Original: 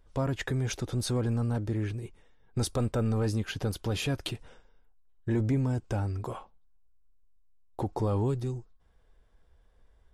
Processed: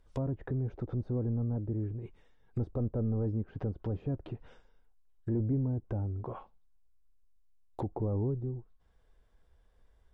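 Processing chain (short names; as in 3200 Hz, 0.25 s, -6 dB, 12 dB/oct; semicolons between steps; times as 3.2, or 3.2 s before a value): treble ducked by the level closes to 530 Hz, closed at -28.5 dBFS; gain -3 dB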